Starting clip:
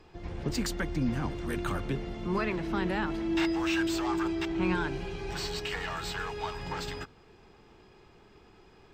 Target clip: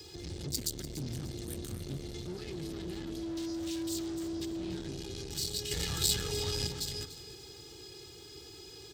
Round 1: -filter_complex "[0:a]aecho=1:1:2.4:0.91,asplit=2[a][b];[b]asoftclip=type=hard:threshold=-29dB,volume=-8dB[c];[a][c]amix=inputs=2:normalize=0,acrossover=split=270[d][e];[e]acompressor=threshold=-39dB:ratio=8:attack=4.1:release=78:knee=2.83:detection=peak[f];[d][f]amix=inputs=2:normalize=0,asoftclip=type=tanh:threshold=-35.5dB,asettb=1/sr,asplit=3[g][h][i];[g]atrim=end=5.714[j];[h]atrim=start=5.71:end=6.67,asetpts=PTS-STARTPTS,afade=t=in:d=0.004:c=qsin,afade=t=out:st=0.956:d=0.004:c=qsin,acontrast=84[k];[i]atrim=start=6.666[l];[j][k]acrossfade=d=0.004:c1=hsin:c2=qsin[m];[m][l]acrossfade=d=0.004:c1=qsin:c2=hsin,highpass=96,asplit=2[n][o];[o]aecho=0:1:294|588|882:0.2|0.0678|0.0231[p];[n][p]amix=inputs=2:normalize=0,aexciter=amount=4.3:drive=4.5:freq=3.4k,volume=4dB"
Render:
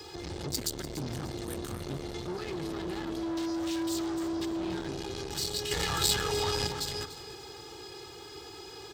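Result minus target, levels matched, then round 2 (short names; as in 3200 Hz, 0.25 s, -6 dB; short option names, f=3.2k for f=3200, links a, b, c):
hard clip: distortion +15 dB; 1000 Hz band +9.5 dB
-filter_complex "[0:a]aecho=1:1:2.4:0.91,asplit=2[a][b];[b]asoftclip=type=hard:threshold=-20dB,volume=-8dB[c];[a][c]amix=inputs=2:normalize=0,acrossover=split=270[d][e];[e]acompressor=threshold=-39dB:ratio=8:attack=4.1:release=78:knee=2.83:detection=peak[f];[d][f]amix=inputs=2:normalize=0,asoftclip=type=tanh:threshold=-35.5dB,asettb=1/sr,asplit=3[g][h][i];[g]atrim=end=5.714[j];[h]atrim=start=5.71:end=6.67,asetpts=PTS-STARTPTS,afade=t=in:d=0.004:c=qsin,afade=t=out:st=0.956:d=0.004:c=qsin,acontrast=84[k];[i]atrim=start=6.666[l];[j][k]acrossfade=d=0.004:c1=hsin:c2=qsin[m];[m][l]acrossfade=d=0.004:c1=qsin:c2=hsin,highpass=96,equalizer=f=1k:t=o:w=2.2:g=-14,asplit=2[n][o];[o]aecho=0:1:294|588|882:0.2|0.0678|0.0231[p];[n][p]amix=inputs=2:normalize=0,aexciter=amount=4.3:drive=4.5:freq=3.4k,volume=4dB"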